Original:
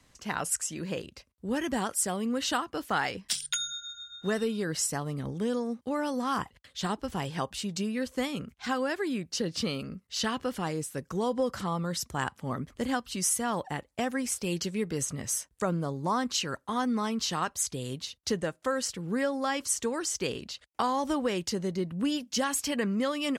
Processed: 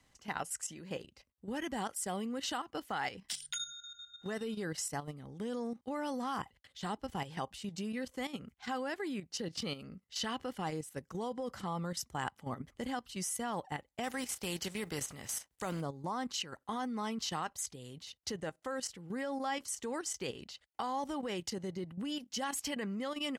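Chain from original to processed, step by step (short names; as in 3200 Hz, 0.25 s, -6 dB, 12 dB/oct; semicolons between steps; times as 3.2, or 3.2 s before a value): 14.03–15.8 spectral contrast lowered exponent 0.67; level quantiser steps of 11 dB; small resonant body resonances 800/2000/3000 Hz, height 6 dB, ringing for 25 ms; gain -4.5 dB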